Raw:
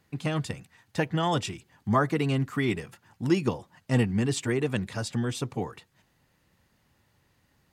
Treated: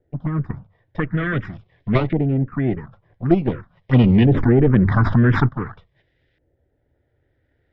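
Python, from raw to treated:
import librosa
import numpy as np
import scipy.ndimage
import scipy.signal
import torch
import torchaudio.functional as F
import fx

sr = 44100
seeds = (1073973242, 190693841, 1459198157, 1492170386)

p1 = fx.lower_of_two(x, sr, delay_ms=0.56)
p2 = scipy.signal.sosfilt(scipy.signal.butter(4, 4900.0, 'lowpass', fs=sr, output='sos'), p1)
p3 = fx.hum_notches(p2, sr, base_hz=50, count=2)
p4 = fx.level_steps(p3, sr, step_db=11)
p5 = p3 + (p4 * 10.0 ** (-1.0 / 20.0))
p6 = fx.env_phaser(p5, sr, low_hz=190.0, high_hz=1700.0, full_db=-17.5)
p7 = fx.filter_lfo_lowpass(p6, sr, shape='saw_up', hz=0.47, low_hz=690.0, high_hz=2800.0, q=1.1)
p8 = fx.env_flatten(p7, sr, amount_pct=70, at=(4.02, 5.47), fade=0.02)
y = p8 * 10.0 ** (5.0 / 20.0)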